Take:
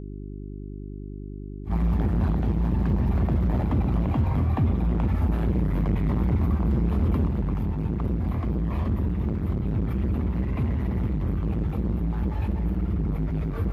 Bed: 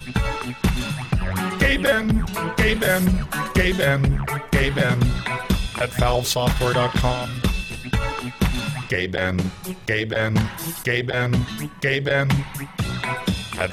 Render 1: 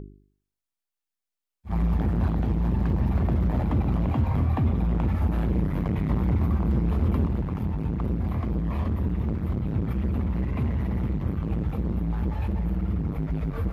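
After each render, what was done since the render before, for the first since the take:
hum removal 50 Hz, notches 8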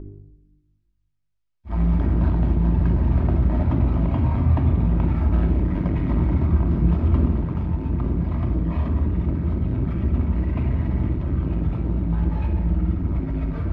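high-frequency loss of the air 100 metres
rectangular room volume 3,200 cubic metres, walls furnished, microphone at 2.8 metres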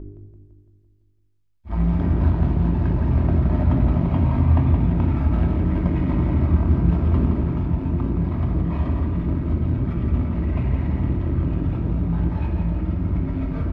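double-tracking delay 23 ms −12 dB
repeating echo 169 ms, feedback 57%, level −6.5 dB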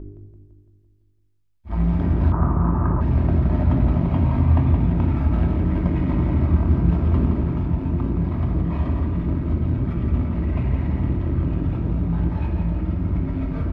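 0:02.32–0:03.01: low-pass with resonance 1,200 Hz, resonance Q 6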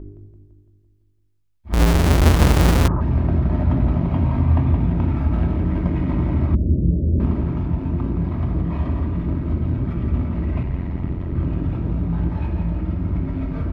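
0:01.73–0:02.88: each half-wave held at its own peak
0:06.55–0:07.20: Butterworth low-pass 600 Hz 96 dB per octave
0:10.63–0:11.35: amplitude modulation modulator 89 Hz, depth 50%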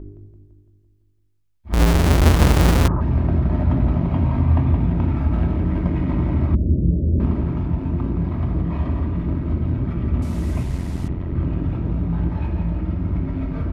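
0:10.22–0:11.08: linear delta modulator 64 kbit/s, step −37 dBFS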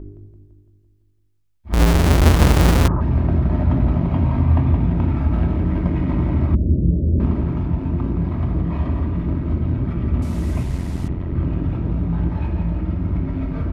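level +1 dB

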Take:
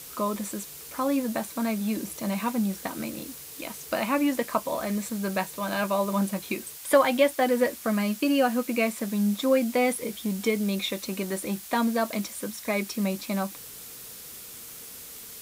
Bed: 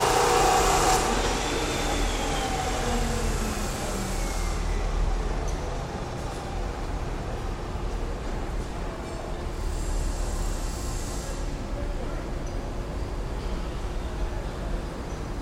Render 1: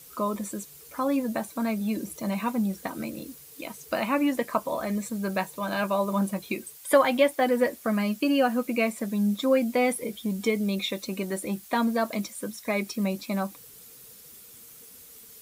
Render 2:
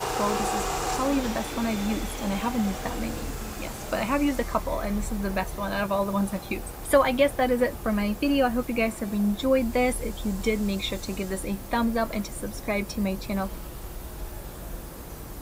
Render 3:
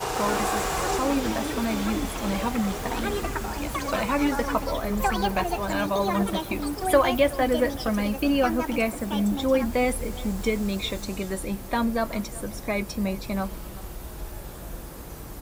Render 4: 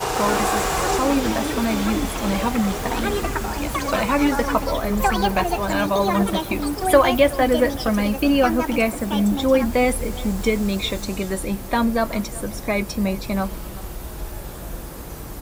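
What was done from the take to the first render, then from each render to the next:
broadband denoise 9 dB, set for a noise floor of −43 dBFS
mix in bed −7 dB
slap from a distant wall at 64 metres, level −19 dB; delay with pitch and tempo change per echo 140 ms, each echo +6 semitones, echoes 2, each echo −6 dB
level +5 dB

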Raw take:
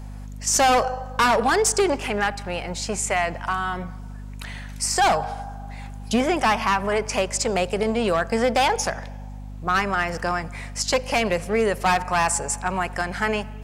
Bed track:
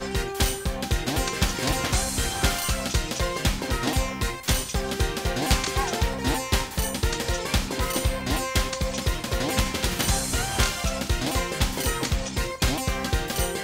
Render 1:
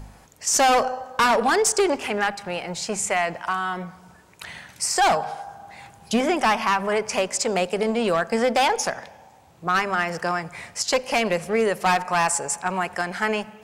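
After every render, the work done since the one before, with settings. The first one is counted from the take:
hum removal 50 Hz, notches 5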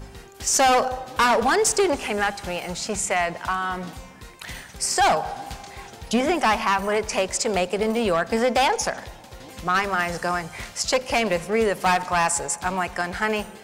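mix in bed track −16 dB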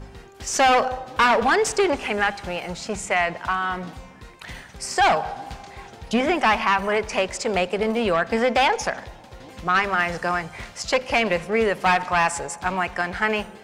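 low-pass filter 3,400 Hz 6 dB per octave
dynamic equaliser 2,400 Hz, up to +5 dB, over −34 dBFS, Q 0.83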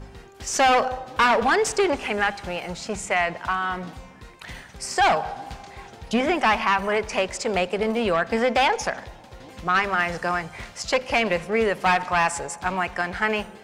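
level −1 dB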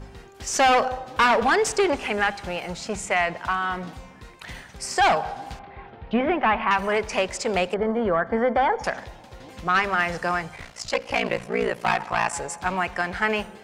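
0:05.59–0:06.71: Bessel low-pass filter 2,100 Hz, order 6
0:07.74–0:08.84: Savitzky-Golay smoothing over 41 samples
0:10.55–0:12.33: ring modulation 29 Hz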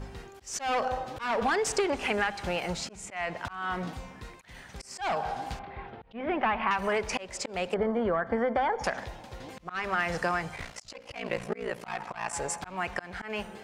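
volume swells 372 ms
downward compressor 6 to 1, threshold −24 dBFS, peak gain reduction 7.5 dB

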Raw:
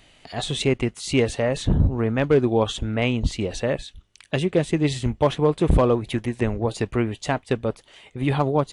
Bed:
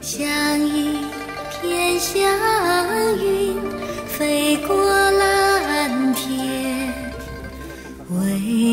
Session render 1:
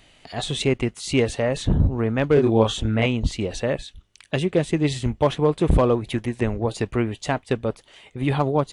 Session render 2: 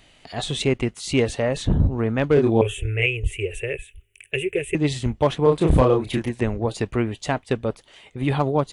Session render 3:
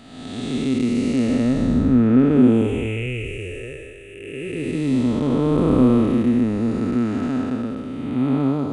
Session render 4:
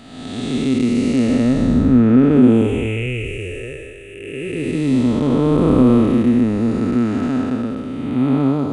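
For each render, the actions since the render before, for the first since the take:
0:02.34–0:03.06: double-tracking delay 27 ms −2.5 dB
0:02.61–0:04.75: drawn EQ curve 110 Hz 0 dB, 240 Hz −28 dB, 410 Hz +6 dB, 610 Hz −15 dB, 1,100 Hz −22 dB, 1,700 Hz −3 dB, 2,600 Hz +10 dB, 4,300 Hz −28 dB, 8,400 Hz +3 dB, 12,000 Hz +11 dB; 0:05.43–0:06.30: double-tracking delay 31 ms −3 dB
spectrum smeared in time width 479 ms; hollow resonant body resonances 250/1,300 Hz, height 17 dB, ringing for 60 ms
level +3.5 dB; brickwall limiter −3 dBFS, peak gain reduction 2 dB

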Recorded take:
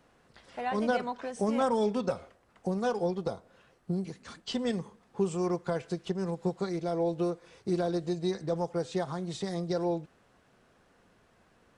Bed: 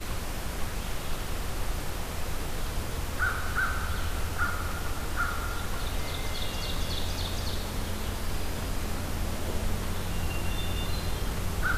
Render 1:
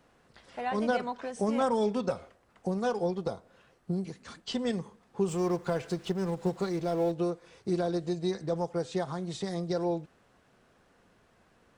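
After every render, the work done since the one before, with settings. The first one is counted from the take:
0:05.28–0:07.12: mu-law and A-law mismatch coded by mu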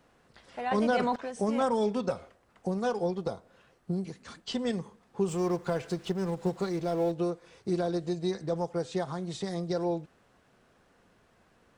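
0:00.71–0:01.16: envelope flattener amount 70%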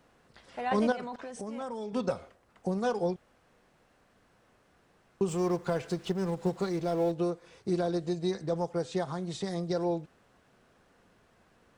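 0:00.92–0:01.93: downward compressor 3 to 1, threshold −38 dBFS
0:03.16–0:05.21: fill with room tone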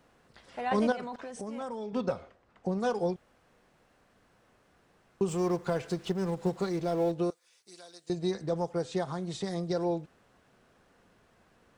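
0:01.75–0:02.80: high-frequency loss of the air 78 metres
0:07.30–0:08.10: first difference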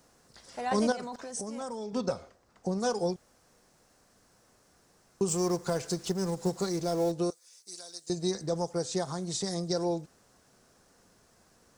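high shelf with overshoot 4,100 Hz +10 dB, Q 1.5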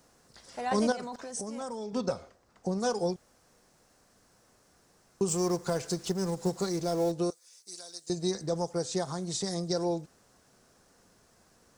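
no processing that can be heard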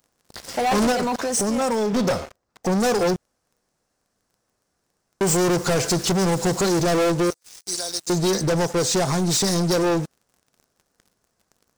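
leveller curve on the samples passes 5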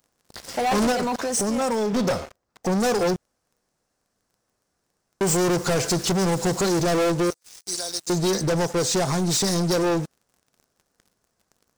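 level −1.5 dB

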